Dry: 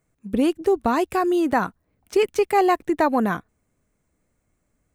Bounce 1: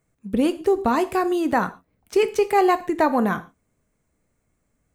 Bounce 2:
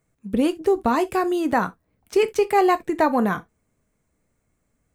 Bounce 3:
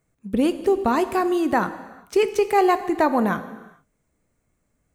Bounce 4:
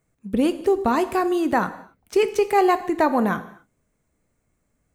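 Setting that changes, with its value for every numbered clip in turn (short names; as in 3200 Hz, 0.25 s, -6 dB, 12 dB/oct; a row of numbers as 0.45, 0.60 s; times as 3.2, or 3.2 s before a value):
non-linear reverb, gate: 160, 90, 470, 290 ms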